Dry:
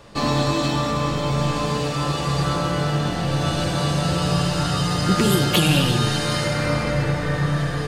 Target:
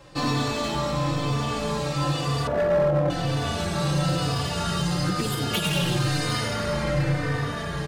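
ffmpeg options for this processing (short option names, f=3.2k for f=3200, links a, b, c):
-filter_complex "[0:a]asettb=1/sr,asplit=3[a][b][c];[a]atrim=end=2.474[d];[b]atrim=start=2.47:end=3.1,asetpts=PTS-STARTPTS,afade=t=in:d=0.004:c=qsin,afade=t=out:st=0.626:d=0.004:c=qsin,lowpass=f=600:t=q:w=4.9[e];[c]atrim=start=3.096[f];[d][e]acrossfade=d=0.004:c1=hsin:c2=qsin[g];[g][f]acrossfade=d=0.004:c1=qsin:c2=hsin,asettb=1/sr,asplit=3[h][i][j];[h]atrim=end=4.814[k];[i]atrim=start=4.81:end=5.64,asetpts=PTS-STARTPTS,afade=t=in:d=0.004:c=qsin,afade=t=out:st=0.826:d=0.004:c=qsin,acompressor=threshold=-17dB:ratio=6[l];[j]atrim=start=5.636[m];[k][l]acrossfade=d=0.004:c1=hsin:c2=qsin[n];[n][m]acrossfade=d=0.004:c1=qsin:c2=hsin,asoftclip=type=hard:threshold=-16.5dB,asplit=2[o][p];[p]adelay=3.3,afreqshift=-1[q];[o][q]amix=inputs=2:normalize=1"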